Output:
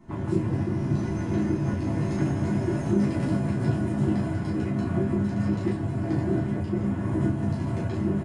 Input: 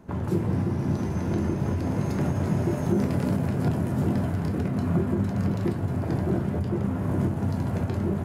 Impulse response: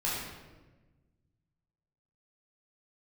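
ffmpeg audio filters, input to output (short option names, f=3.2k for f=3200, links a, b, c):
-filter_complex "[1:a]atrim=start_sample=2205,afade=t=out:st=0.14:d=0.01,atrim=end_sample=6615,asetrate=88200,aresample=44100[a];[0:a][a]afir=irnorm=-1:irlink=0,aresample=22050,aresample=44100"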